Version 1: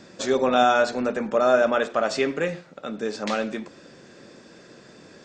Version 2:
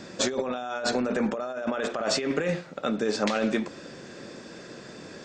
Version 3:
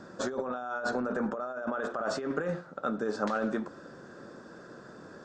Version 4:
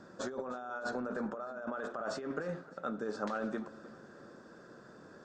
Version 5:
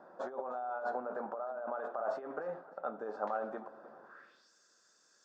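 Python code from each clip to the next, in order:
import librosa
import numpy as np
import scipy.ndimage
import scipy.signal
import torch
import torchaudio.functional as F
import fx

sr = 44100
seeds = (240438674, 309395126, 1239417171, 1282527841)

y1 = fx.over_compress(x, sr, threshold_db=-28.0, ratio=-1.0)
y2 = fx.high_shelf_res(y1, sr, hz=1800.0, db=-7.5, q=3.0)
y2 = y2 * librosa.db_to_amplitude(-5.5)
y3 = fx.echo_feedback(y2, sr, ms=305, feedback_pct=49, wet_db=-19)
y3 = y3 * librosa.db_to_amplitude(-6.0)
y4 = fx.filter_sweep_bandpass(y3, sr, from_hz=770.0, to_hz=6500.0, start_s=4.01, end_s=4.51, q=2.7)
y4 = y4 * librosa.db_to_amplitude(7.5)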